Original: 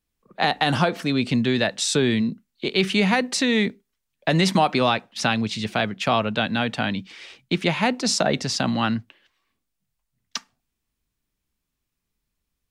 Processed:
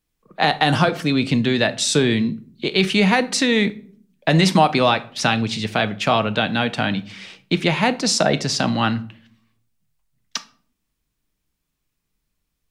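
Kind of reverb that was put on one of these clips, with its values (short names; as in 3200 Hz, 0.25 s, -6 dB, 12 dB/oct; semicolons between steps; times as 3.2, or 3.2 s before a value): shoebox room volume 580 m³, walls furnished, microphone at 0.54 m; gain +3 dB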